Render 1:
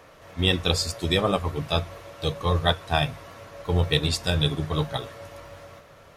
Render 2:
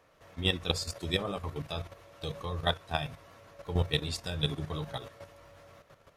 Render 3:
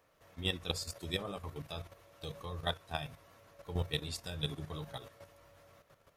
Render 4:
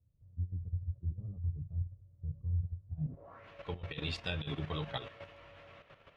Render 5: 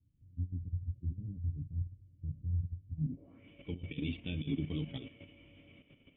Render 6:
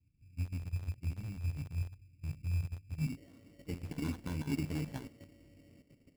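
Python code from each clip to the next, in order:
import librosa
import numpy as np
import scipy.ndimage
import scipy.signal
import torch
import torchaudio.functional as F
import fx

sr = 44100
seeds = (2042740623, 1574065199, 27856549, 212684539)

y1 = fx.level_steps(x, sr, step_db=10)
y1 = y1 * librosa.db_to_amplitude(-4.5)
y2 = fx.high_shelf(y1, sr, hz=11000.0, db=11.5)
y2 = y2 * librosa.db_to_amplitude(-6.5)
y3 = fx.over_compress(y2, sr, threshold_db=-39.0, ratio=-0.5)
y3 = fx.filter_sweep_lowpass(y3, sr, from_hz=100.0, to_hz=2800.0, start_s=2.93, end_s=3.48, q=2.4)
y3 = y3 * librosa.db_to_amplitude(2.5)
y4 = fx.formant_cascade(y3, sr, vowel='i')
y4 = y4 * librosa.db_to_amplitude(12.0)
y5 = fx.rattle_buzz(y4, sr, strikes_db=-46.0, level_db=-42.0)
y5 = fx.env_lowpass(y5, sr, base_hz=680.0, full_db=-32.5)
y5 = fx.sample_hold(y5, sr, seeds[0], rate_hz=2500.0, jitter_pct=0)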